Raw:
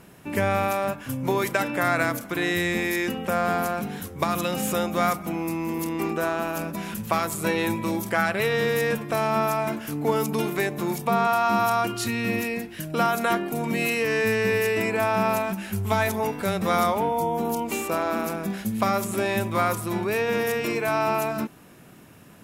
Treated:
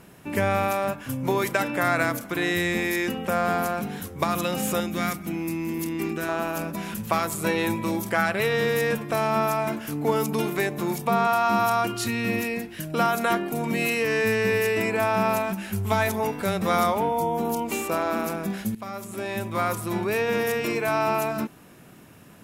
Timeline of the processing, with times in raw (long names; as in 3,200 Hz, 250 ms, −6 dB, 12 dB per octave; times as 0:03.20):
0:04.80–0:06.29: flat-topped bell 760 Hz −8.5 dB
0:18.75–0:19.96: fade in, from −16.5 dB